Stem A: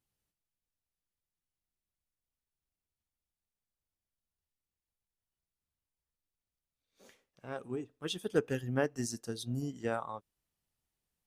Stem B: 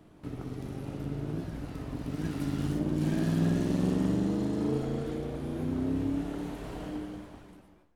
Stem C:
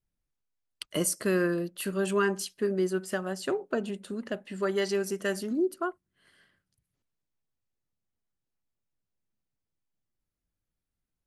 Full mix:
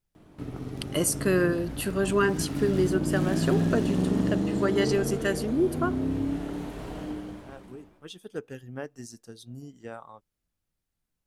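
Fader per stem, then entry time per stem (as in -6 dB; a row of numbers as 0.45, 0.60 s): -6.0, +2.0, +2.5 dB; 0.00, 0.15, 0.00 s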